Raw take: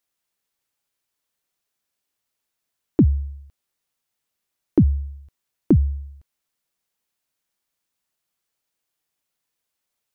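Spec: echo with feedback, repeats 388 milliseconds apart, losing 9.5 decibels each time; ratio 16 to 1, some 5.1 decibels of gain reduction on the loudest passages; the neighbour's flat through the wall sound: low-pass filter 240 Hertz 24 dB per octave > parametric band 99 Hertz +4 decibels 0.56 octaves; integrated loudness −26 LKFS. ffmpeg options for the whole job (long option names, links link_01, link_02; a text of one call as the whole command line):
ffmpeg -i in.wav -af "acompressor=threshold=-15dB:ratio=16,lowpass=frequency=240:width=0.5412,lowpass=frequency=240:width=1.3066,equalizer=frequency=99:width_type=o:width=0.56:gain=4,aecho=1:1:388|776|1164|1552:0.335|0.111|0.0365|0.012,volume=1dB" out.wav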